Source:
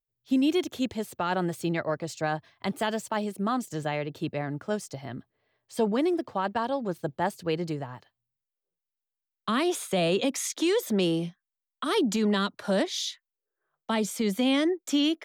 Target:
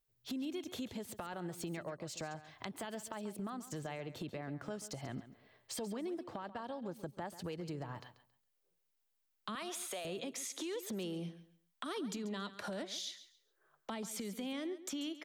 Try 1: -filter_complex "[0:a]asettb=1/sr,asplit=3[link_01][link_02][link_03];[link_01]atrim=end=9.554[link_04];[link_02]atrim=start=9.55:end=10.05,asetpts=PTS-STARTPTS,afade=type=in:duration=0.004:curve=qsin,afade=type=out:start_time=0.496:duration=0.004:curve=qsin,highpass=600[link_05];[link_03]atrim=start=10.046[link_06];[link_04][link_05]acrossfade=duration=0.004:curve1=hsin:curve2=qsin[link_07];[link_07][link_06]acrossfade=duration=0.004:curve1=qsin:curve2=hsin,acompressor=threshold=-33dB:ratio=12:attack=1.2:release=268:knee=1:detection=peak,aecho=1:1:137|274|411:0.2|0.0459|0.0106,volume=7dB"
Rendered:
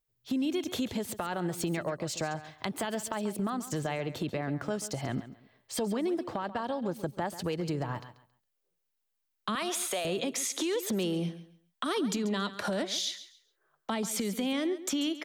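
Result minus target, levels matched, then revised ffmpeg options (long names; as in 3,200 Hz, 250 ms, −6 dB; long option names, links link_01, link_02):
downward compressor: peak gain reduction −10 dB
-filter_complex "[0:a]asettb=1/sr,asplit=3[link_01][link_02][link_03];[link_01]atrim=end=9.554[link_04];[link_02]atrim=start=9.55:end=10.05,asetpts=PTS-STARTPTS,afade=type=in:duration=0.004:curve=qsin,afade=type=out:start_time=0.496:duration=0.004:curve=qsin,highpass=600[link_05];[link_03]atrim=start=10.046[link_06];[link_04][link_05]acrossfade=duration=0.004:curve1=hsin:curve2=qsin[link_07];[link_07][link_06]acrossfade=duration=0.004:curve1=qsin:curve2=hsin,acompressor=threshold=-44dB:ratio=12:attack=1.2:release=268:knee=1:detection=peak,aecho=1:1:137|274|411:0.2|0.0459|0.0106,volume=7dB"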